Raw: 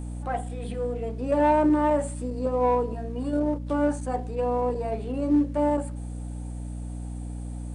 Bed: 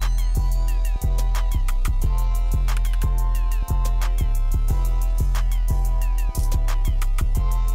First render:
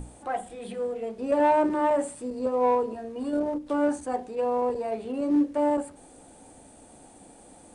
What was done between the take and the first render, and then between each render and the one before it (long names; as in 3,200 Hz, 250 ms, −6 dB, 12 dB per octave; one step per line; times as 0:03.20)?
mains-hum notches 60/120/180/240/300 Hz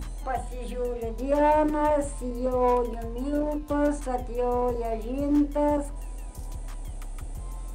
mix in bed −16 dB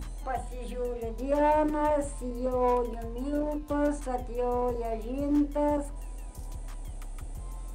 level −3 dB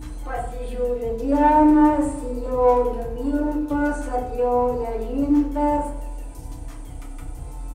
repeating echo 94 ms, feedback 59%, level −15 dB
feedback delay network reverb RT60 0.54 s, low-frequency decay 1.2×, high-frequency decay 0.55×, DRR −3.5 dB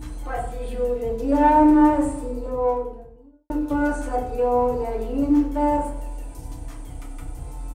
0:01.99–0:03.50: fade out and dull